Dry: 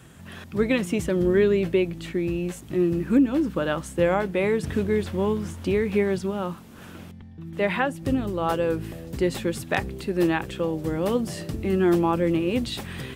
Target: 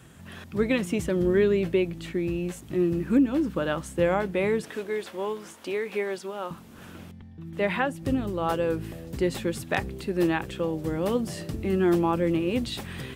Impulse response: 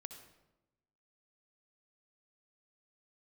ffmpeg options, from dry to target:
-filter_complex "[0:a]asettb=1/sr,asplit=3[s0][s1][s2];[s0]atrim=end=4.624[s3];[s1]atrim=start=4.62:end=6.51,asetpts=PTS-STARTPTS,afade=t=in:d=0.004:c=qsin,afade=t=out:st=1.886:d=0.004:c=qsin,highpass=440[s4];[s2]atrim=start=6.506[s5];[s3][s4]acrossfade=d=0.004:c1=hsin:c2=qsin[s6];[s6][s5]acrossfade=d=0.004:c1=qsin:c2=hsin,volume=0.794"

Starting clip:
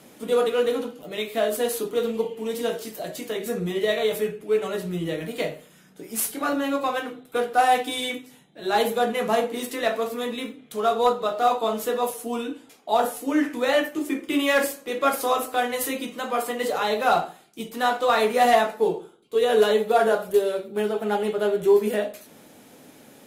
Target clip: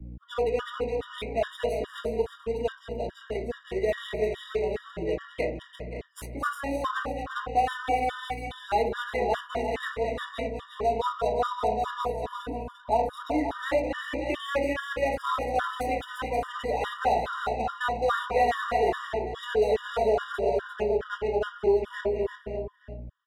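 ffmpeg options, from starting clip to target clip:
-filter_complex "[0:a]lowshelf=f=230:g=-9.5,aeval=exprs='val(0)+0.0126*(sin(2*PI*60*n/s)+sin(2*PI*2*60*n/s)/2+sin(2*PI*3*60*n/s)/3+sin(2*PI*4*60*n/s)/4+sin(2*PI*5*60*n/s)/5)':c=same,afftdn=nr=18:nf=-42,asplit=2[s0][s1];[s1]aecho=0:1:215|443|525|583|588:0.376|0.1|0.251|0.168|0.133[s2];[s0][s2]amix=inputs=2:normalize=0,adynamicsmooth=sensitivity=5:basefreq=1800,asplit=2[s3][s4];[s4]aecho=0:1:347:0.376[s5];[s3][s5]amix=inputs=2:normalize=0,acrossover=split=110|270|2500[s6][s7][s8][s9];[s6]acompressor=threshold=0.0112:ratio=4[s10];[s7]acompressor=threshold=0.00891:ratio=4[s11];[s8]acompressor=threshold=0.112:ratio=4[s12];[s9]acompressor=threshold=0.00891:ratio=4[s13];[s10][s11][s12][s13]amix=inputs=4:normalize=0,afftfilt=real='re*gt(sin(2*PI*2.4*pts/sr)*(1-2*mod(floor(b*sr/1024/960),2)),0)':imag='im*gt(sin(2*PI*2.4*pts/sr)*(1-2*mod(floor(b*sr/1024/960),2)),0)':win_size=1024:overlap=0.75"

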